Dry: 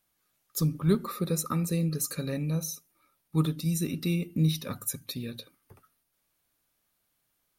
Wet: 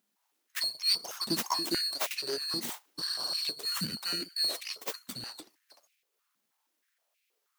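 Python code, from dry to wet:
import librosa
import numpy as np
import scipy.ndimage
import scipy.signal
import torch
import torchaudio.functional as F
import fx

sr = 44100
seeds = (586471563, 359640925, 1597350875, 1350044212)

y = fx.band_swap(x, sr, width_hz=2000)
y = fx.spec_repair(y, sr, seeds[0], start_s=3.01, length_s=0.41, low_hz=2000.0, high_hz=7000.0, source='after')
y = fx.high_shelf(y, sr, hz=4700.0, db=4.0, at=(1.2, 3.36))
y = np.abs(y)
y = fx.filter_held_highpass(y, sr, hz=6.3, low_hz=220.0, high_hz=2400.0)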